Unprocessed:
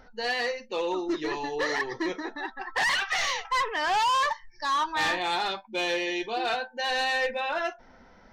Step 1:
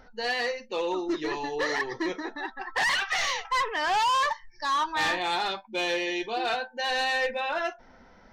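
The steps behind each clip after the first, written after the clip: nothing audible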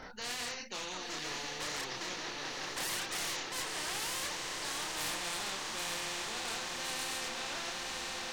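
diffused feedback echo 0.983 s, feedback 61%, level -8.5 dB; chorus voices 6, 0.79 Hz, delay 29 ms, depth 3.9 ms; spectral compressor 4:1; gain -7 dB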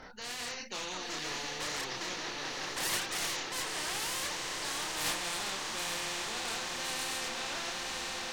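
gate -34 dBFS, range -12 dB; AGC gain up to 4 dB; in parallel at -3 dB: sine folder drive 6 dB, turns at -27.5 dBFS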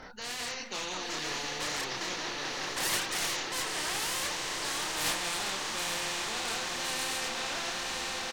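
speakerphone echo 0.19 s, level -11 dB; gain +2.5 dB

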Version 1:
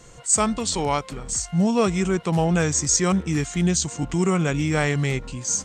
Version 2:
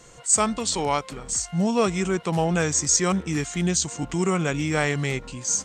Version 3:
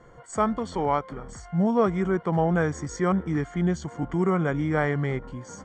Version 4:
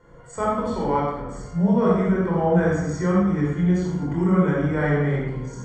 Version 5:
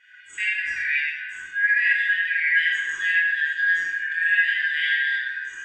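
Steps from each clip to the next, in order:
low shelf 190 Hz -6.5 dB
polynomial smoothing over 41 samples
reverb RT60 1.1 s, pre-delay 24 ms, DRR -5 dB; gain -6 dB
four-band scrambler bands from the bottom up 4123; gain -2 dB

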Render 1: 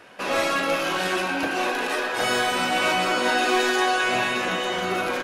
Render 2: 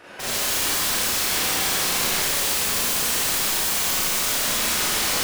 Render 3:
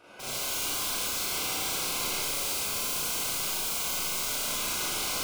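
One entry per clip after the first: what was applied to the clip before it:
wrapped overs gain 27.5 dB; Schroeder reverb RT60 1.9 s, combs from 30 ms, DRR -9 dB
Butterworth band-stop 1800 Hz, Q 4.2; on a send: flutter echo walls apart 6.3 m, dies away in 0.29 s; on the sum: gain -9 dB

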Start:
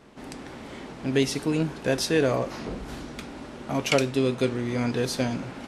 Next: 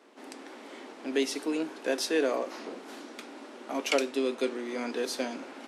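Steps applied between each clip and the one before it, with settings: steep high-pass 260 Hz 36 dB/oct; gain -4 dB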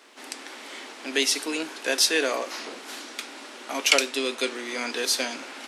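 tilt shelf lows -8 dB, about 1100 Hz; gain +5.5 dB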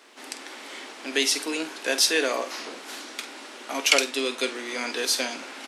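doubler 48 ms -13 dB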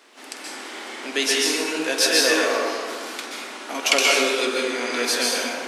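plate-style reverb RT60 1.7 s, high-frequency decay 0.5×, pre-delay 0.115 s, DRR -4 dB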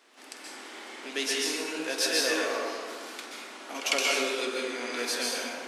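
reverse echo 0.102 s -16 dB; gain -8.5 dB

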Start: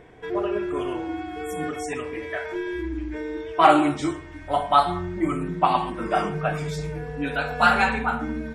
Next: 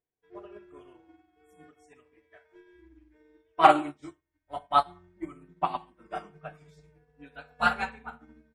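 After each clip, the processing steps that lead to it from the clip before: upward expander 2.5:1, over -41 dBFS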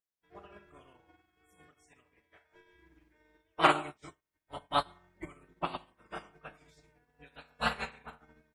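spectral limiter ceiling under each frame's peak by 16 dB; gain -6.5 dB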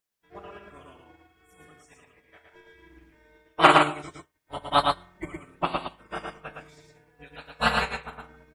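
echo 0.113 s -3 dB; gain +7.5 dB

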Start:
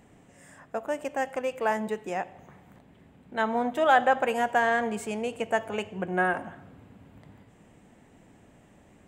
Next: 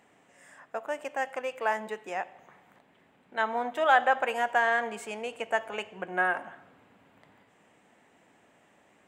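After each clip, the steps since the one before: HPF 1200 Hz 6 dB/oct; high shelf 3800 Hz -9.5 dB; gain +4 dB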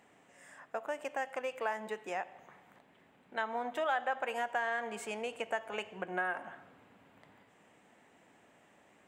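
compressor 2.5:1, threshold -32 dBFS, peak gain reduction 11 dB; gain -1.5 dB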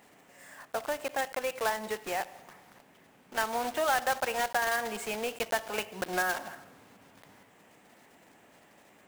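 block floating point 3-bit; gain +4.5 dB

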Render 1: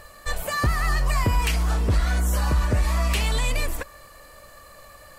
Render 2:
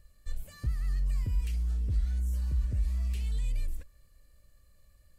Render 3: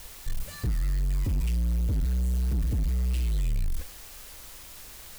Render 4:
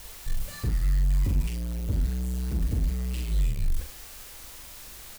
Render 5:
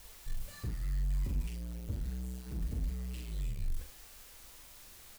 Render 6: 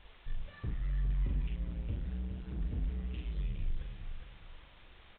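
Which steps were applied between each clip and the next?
passive tone stack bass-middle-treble 10-0-1
in parallel at 0 dB: requantised 8-bit, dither triangular; on the sum: overloaded stage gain 25.5 dB; gain +2 dB
doubler 42 ms -5 dB
flange 0.7 Hz, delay 3.6 ms, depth 7.4 ms, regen -65%; gain -5.5 dB
feedback echo 0.411 s, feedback 33%, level -8 dB; downsampling 8000 Hz

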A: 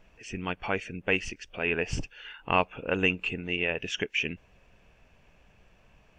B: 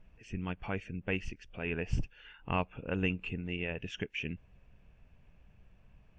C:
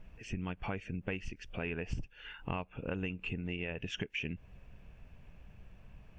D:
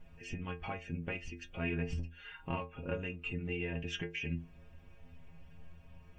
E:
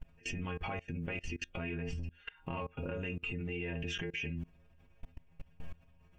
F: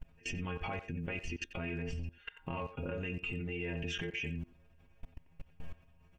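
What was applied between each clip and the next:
tone controls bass +11 dB, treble -6 dB; gain -9 dB
compressor 6:1, threshold -40 dBFS, peak gain reduction 15 dB; gain +6 dB
metallic resonator 81 Hz, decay 0.37 s, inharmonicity 0.008; gain +9.5 dB
level quantiser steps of 24 dB; gain +10 dB
speakerphone echo 90 ms, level -12 dB

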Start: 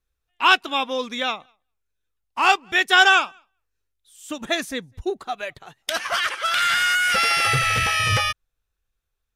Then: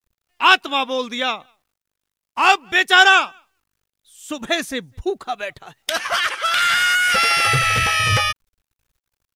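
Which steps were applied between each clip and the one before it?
requantised 12-bit, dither none; gain +3 dB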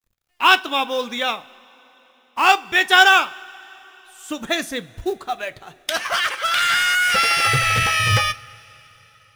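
companded quantiser 6-bit; two-slope reverb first 0.24 s, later 4.1 s, from -22 dB, DRR 12.5 dB; gain -1 dB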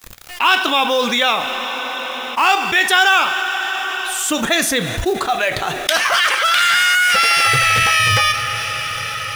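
low shelf 360 Hz -6.5 dB; fast leveller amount 70%; gain -2 dB

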